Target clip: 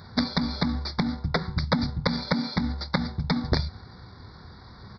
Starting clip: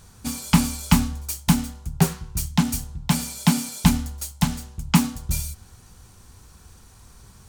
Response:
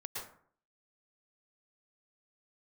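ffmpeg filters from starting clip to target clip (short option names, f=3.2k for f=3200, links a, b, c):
-af "highpass=90,acompressor=threshold=-21dB:ratio=20,alimiter=limit=-15.5dB:level=0:latency=1:release=140,aresample=16000,aeval=exprs='(mod(10.6*val(0)+1,2)-1)/10.6':c=same,aresample=44100,atempo=1.5,aresample=11025,aresample=44100,asuperstop=centerf=2800:order=12:qfactor=2.3,volume=8dB"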